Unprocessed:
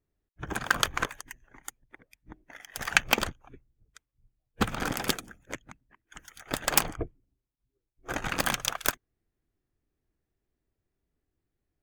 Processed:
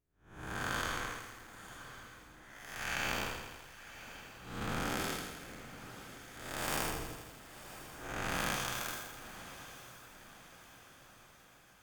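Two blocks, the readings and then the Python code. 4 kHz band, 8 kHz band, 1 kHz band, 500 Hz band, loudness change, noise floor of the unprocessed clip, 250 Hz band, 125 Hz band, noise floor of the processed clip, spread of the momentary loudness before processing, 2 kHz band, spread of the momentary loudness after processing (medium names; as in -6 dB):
-8.5 dB, -9.0 dB, -6.0 dB, -5.5 dB, -10.5 dB, -85 dBFS, -6.0 dB, -4.5 dB, -61 dBFS, 20 LU, -7.5 dB, 20 LU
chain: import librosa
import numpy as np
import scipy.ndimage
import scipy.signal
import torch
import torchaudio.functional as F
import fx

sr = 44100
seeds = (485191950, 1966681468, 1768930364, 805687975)

y = fx.spec_blur(x, sr, span_ms=252.0)
y = fx.echo_diffused(y, sr, ms=1052, feedback_pct=54, wet_db=-13.0)
y = fx.echo_crushed(y, sr, ms=82, feedback_pct=80, bits=9, wet_db=-10)
y = F.gain(torch.from_numpy(y), -1.5).numpy()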